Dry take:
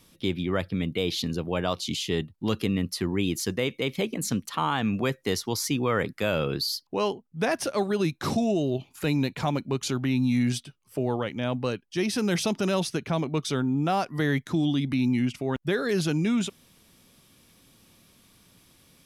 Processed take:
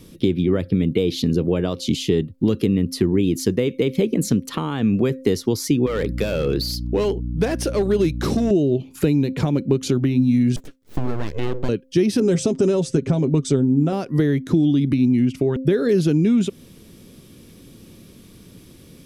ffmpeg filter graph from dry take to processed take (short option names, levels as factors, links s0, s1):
-filter_complex "[0:a]asettb=1/sr,asplit=3[s0][s1][s2];[s0]atrim=end=5.864[s3];[s1]atrim=start=5.86:end=8.51,asetpts=PTS-STARTPTS,afade=t=in:d=0.004:c=qsin,afade=t=out:st=2.646:d=0.004:c=qsin,lowshelf=f=390:g=-8.5,volume=17.8,asoftclip=hard,volume=0.0562,aeval=exprs='val(0)+0.01*(sin(2*PI*60*n/s)+sin(2*PI*2*60*n/s)/2+sin(2*PI*3*60*n/s)/3+sin(2*PI*4*60*n/s)/4+sin(2*PI*5*60*n/s)/5)':c=same[s4];[s2]atrim=start=8.506[s5];[s3][s4]acrossfade=d=0.004:c1=hsin:c2=qsin[s6];[s6][s5]acrossfade=d=0.004:c1=qsin:c2=hsin,asettb=1/sr,asplit=3[s7][s8][s9];[s7]atrim=end=10.564[s10];[s8]atrim=start=10.56:end=11.69,asetpts=PTS-STARTPTS,afade=t=in:d=0.004:c=qsin,afade=t=out:st=1.126:d=0.004:c=qsin,highpass=f=370:p=1,aeval=exprs='abs(val(0))':c=same,adynamicequalizer=threshold=0.00355:dfrequency=1800:dqfactor=0.7:tfrequency=1800:tqfactor=0.7:attack=5:release=100:ratio=0.375:range=2.5:mode=cutabove:tftype=highshelf[s11];[s9]atrim=start=11.686[s12];[s10][s11]acrossfade=d=0.004:c1=hsin:c2=qsin[s13];[s13][s12]acrossfade=d=0.004:c1=qsin:c2=hsin,asettb=1/sr,asplit=3[s14][s15][s16];[s14]atrim=end=12.204[s17];[s15]atrim=start=12.2:end=13.93,asetpts=PTS-STARTPTS,afade=t=in:d=0.004:c=qsin,afade=t=out:st=1.726:d=0.004:c=qsin,lowpass=f=7800:t=q:w=5,aecho=1:1:7.5:0.51,atrim=end_sample=76293,adynamicequalizer=threshold=0.00794:dfrequency=1500:dqfactor=0.7:tfrequency=1500:tqfactor=0.7:attack=5:release=100:ratio=0.375:range=3.5:mode=cutabove:tftype=highshelf[s18];[s16]atrim=start=13.926[s19];[s17][s18]acrossfade=d=0.004:c1=hsin:c2=qsin[s20];[s20][s19]acrossfade=d=0.004:c1=qsin:c2=hsin,acompressor=threshold=0.0282:ratio=6,lowshelf=f=580:t=q:w=1.5:g=9,bandreject=f=262.7:t=h:w=4,bandreject=f=525.4:t=h:w=4,volume=2.11"